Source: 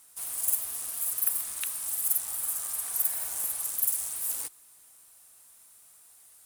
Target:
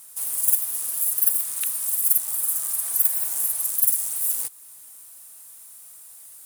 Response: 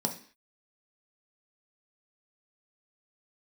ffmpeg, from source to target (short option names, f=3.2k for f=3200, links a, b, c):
-filter_complex "[0:a]highshelf=f=9.7k:g=10.5,asplit=2[a][b];[b]acompressor=threshold=-36dB:ratio=6,volume=0dB[c];[a][c]amix=inputs=2:normalize=0,volume=-1dB"